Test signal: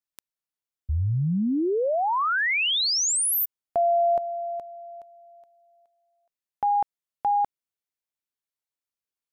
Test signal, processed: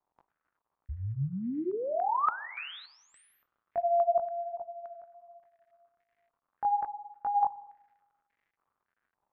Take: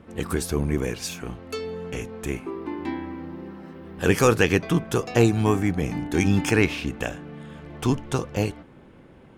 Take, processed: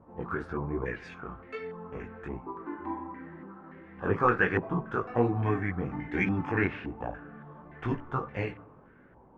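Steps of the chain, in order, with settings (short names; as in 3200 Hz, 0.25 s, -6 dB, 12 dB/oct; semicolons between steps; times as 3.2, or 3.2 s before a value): chorus voices 2, 1.2 Hz, delay 19 ms, depth 3 ms; spring tank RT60 1.2 s, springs 37/55 ms, chirp 70 ms, DRR 17.5 dB; crackle 230/s -58 dBFS; stepped low-pass 3.5 Hz 920–2000 Hz; gain -6 dB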